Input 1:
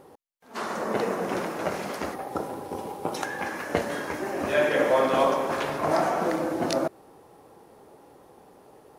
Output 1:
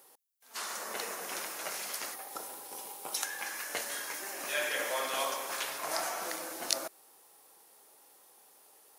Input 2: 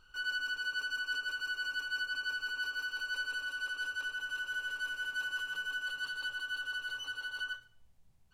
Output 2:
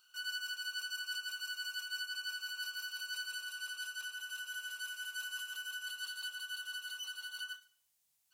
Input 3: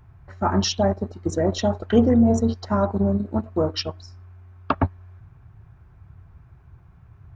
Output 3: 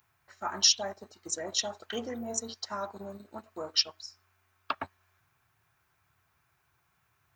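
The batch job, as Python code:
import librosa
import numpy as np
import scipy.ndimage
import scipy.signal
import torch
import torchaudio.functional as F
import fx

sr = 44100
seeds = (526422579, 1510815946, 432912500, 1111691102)

y = np.diff(x, prepend=0.0)
y = y * librosa.db_to_amplitude(6.5)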